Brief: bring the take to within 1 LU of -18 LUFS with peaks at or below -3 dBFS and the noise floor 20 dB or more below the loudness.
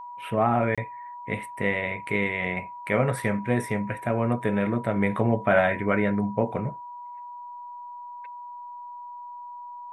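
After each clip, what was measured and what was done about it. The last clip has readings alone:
dropouts 1; longest dropout 26 ms; steady tone 970 Hz; tone level -37 dBFS; loudness -26.0 LUFS; peak -7.0 dBFS; loudness target -18.0 LUFS
-> interpolate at 0.75, 26 ms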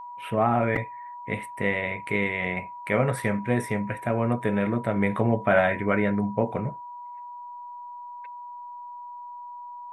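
dropouts 0; steady tone 970 Hz; tone level -37 dBFS
-> notch 970 Hz, Q 30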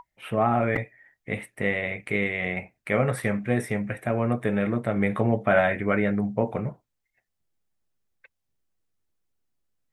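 steady tone none; loudness -26.0 LUFS; peak -7.5 dBFS; loudness target -18.0 LUFS
-> gain +8 dB; limiter -3 dBFS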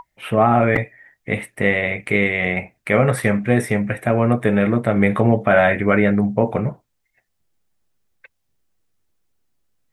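loudness -18.5 LUFS; peak -3.0 dBFS; noise floor -72 dBFS

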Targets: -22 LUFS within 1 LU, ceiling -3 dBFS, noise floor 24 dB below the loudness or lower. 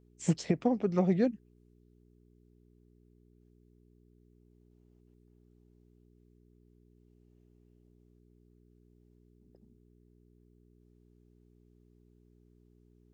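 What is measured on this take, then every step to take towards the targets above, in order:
hum 60 Hz; harmonics up to 420 Hz; hum level -62 dBFS; loudness -30.0 LUFS; peak -14.0 dBFS; loudness target -22.0 LUFS
-> de-hum 60 Hz, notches 7; gain +8 dB

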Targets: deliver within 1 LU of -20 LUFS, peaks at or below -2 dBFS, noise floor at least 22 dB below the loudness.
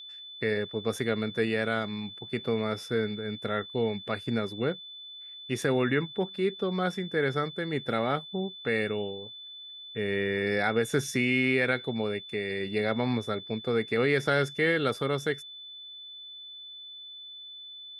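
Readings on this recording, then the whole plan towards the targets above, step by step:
steady tone 3500 Hz; tone level -42 dBFS; loudness -29.5 LUFS; peak -12.0 dBFS; loudness target -20.0 LUFS
-> notch 3500 Hz, Q 30; gain +9.5 dB

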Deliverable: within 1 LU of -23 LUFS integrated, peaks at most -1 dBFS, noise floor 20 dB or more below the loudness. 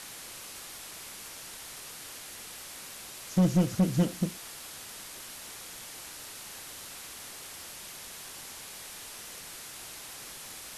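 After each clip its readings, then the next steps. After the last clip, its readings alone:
clipped 0.5%; flat tops at -18.5 dBFS; noise floor -45 dBFS; noise floor target -56 dBFS; loudness -35.5 LUFS; peak -18.5 dBFS; loudness target -23.0 LUFS
-> clip repair -18.5 dBFS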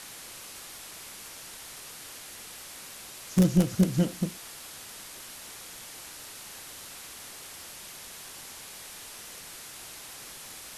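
clipped 0.0%; noise floor -45 dBFS; noise floor target -54 dBFS
-> denoiser 9 dB, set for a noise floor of -45 dBFS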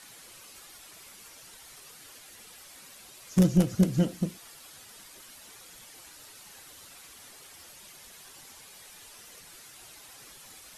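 noise floor -51 dBFS; loudness -26.0 LUFS; peak -10.0 dBFS; loudness target -23.0 LUFS
-> gain +3 dB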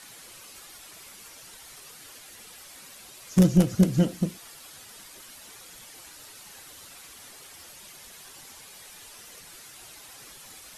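loudness -23.0 LUFS; peak -7.0 dBFS; noise floor -48 dBFS

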